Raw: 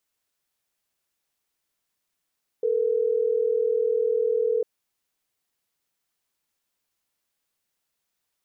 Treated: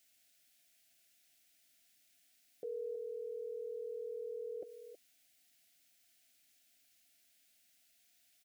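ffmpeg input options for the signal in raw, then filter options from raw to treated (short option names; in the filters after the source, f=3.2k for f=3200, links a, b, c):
-f lavfi -i "aevalsrc='0.0708*(sin(2*PI*440*t)+sin(2*PI*480*t))*clip(min(mod(t,6),2-mod(t,6))/0.005,0,1)':d=3.12:s=44100"
-filter_complex "[0:a]firequalizer=gain_entry='entry(190,0);entry(270,8);entry(440,-12);entry(690,9);entry(980,-22);entry(1400,2);entry(2200,9)':delay=0.05:min_phase=1,alimiter=level_in=11.5dB:limit=-24dB:level=0:latency=1:release=98,volume=-11.5dB,asplit=2[a][b];[b]adelay=320,highpass=300,lowpass=3.4k,asoftclip=type=hard:threshold=-36.5dB,volume=-11dB[c];[a][c]amix=inputs=2:normalize=0"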